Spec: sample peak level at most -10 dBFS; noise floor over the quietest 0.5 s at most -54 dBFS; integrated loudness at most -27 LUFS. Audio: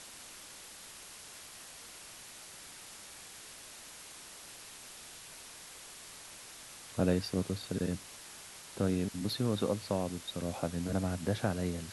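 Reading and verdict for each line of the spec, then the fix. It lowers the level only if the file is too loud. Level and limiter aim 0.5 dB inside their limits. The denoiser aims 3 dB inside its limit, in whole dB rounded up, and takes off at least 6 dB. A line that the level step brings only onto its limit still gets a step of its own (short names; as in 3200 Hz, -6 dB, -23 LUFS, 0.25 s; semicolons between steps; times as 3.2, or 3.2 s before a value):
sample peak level -16.5 dBFS: OK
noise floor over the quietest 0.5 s -50 dBFS: fail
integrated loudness -38.5 LUFS: OK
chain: denoiser 7 dB, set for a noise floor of -50 dBFS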